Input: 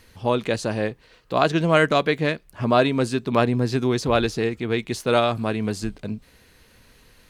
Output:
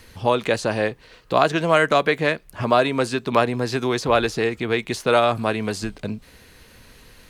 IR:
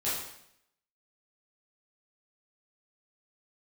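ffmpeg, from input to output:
-filter_complex "[0:a]acrossover=split=460|2800|6200[link_01][link_02][link_03][link_04];[link_01]acompressor=threshold=-32dB:ratio=4[link_05];[link_02]acompressor=threshold=-19dB:ratio=4[link_06];[link_03]acompressor=threshold=-40dB:ratio=4[link_07];[link_04]acompressor=threshold=-44dB:ratio=4[link_08];[link_05][link_06][link_07][link_08]amix=inputs=4:normalize=0,volume=5.5dB"

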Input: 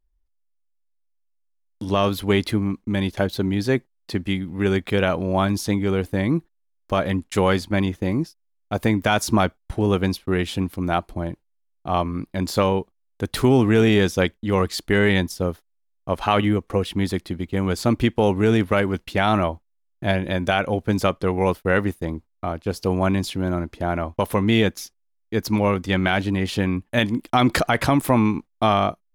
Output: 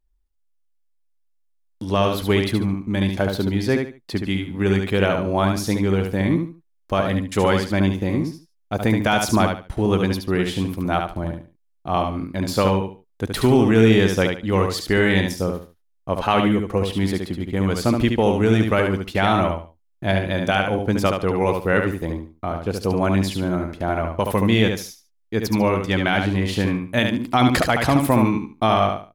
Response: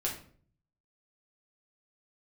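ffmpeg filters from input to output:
-af "aecho=1:1:72|144|216:0.562|0.141|0.0351"

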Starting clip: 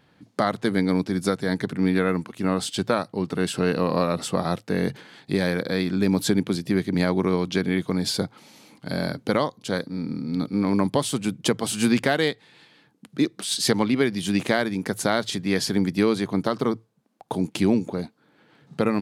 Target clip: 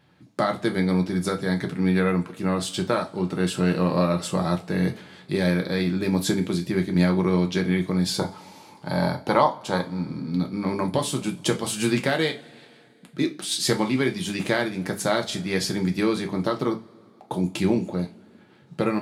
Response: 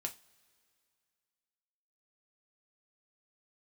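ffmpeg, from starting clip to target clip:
-filter_complex "[0:a]asettb=1/sr,asplit=3[link_01][link_02][link_03];[link_01]atrim=end=8.184[link_04];[link_02]atrim=start=8.18:end=10.02,asetpts=PTS-STARTPTS,afade=type=in:duration=0.004:curve=qsin,afade=type=out:start_time=1.836:duration=0.004:curve=qsin,equalizer=frequency=900:width=2.2:gain=13[link_05];[link_03]atrim=start=10.016[link_06];[link_04][link_05]acrossfade=duration=0.004:curve1=hsin:curve2=qsin[link_07];[link_07][link_06]acrossfade=duration=0.004:curve1=qsin:curve2=hsin[link_08];[1:a]atrim=start_sample=2205,asetrate=41013,aresample=44100[link_09];[link_08][link_09]afir=irnorm=-1:irlink=0"

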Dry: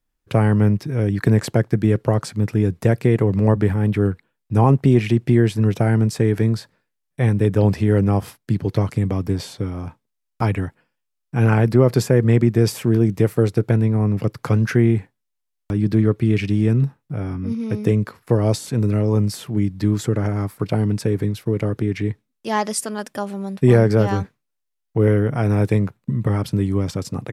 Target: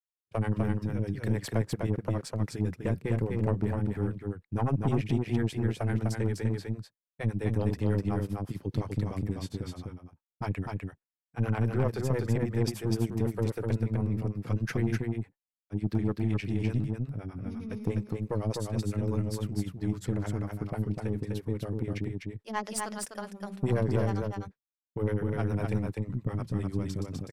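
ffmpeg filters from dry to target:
ffmpeg -i in.wav -filter_complex "[0:a]acrossover=split=420[link_01][link_02];[link_01]aeval=exprs='val(0)*(1-1/2+1/2*cos(2*PI*9.9*n/s))':channel_layout=same[link_03];[link_02]aeval=exprs='val(0)*(1-1/2-1/2*cos(2*PI*9.9*n/s))':channel_layout=same[link_04];[link_03][link_04]amix=inputs=2:normalize=0,aeval=exprs='(tanh(4.47*val(0)+0.5)-tanh(0.5))/4.47':channel_layout=same,asplit=2[link_05][link_06];[link_06]aecho=0:1:251:0.668[link_07];[link_05][link_07]amix=inputs=2:normalize=0,agate=range=-33dB:threshold=-32dB:ratio=3:detection=peak,volume=-6.5dB" out.wav

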